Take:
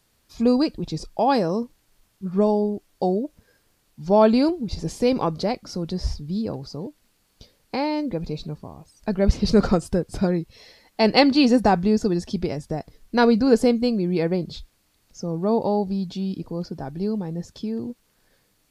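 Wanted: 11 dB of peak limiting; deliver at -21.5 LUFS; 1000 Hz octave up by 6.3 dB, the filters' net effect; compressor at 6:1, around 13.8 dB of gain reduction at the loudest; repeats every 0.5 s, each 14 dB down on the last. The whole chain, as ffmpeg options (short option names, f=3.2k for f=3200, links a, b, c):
-af "equalizer=f=1k:t=o:g=8.5,acompressor=threshold=-23dB:ratio=6,alimiter=limit=-21.5dB:level=0:latency=1,aecho=1:1:500|1000:0.2|0.0399,volume=10.5dB"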